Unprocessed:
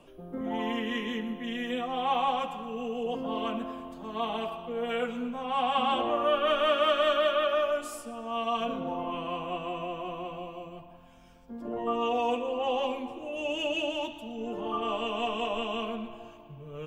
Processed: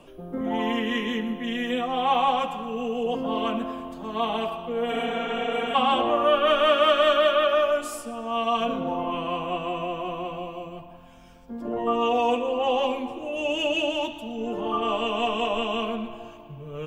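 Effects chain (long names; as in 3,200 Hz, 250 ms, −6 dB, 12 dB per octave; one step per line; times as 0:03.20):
healed spectral selection 0:04.94–0:05.72, 220–7,700 Hz before
level +5.5 dB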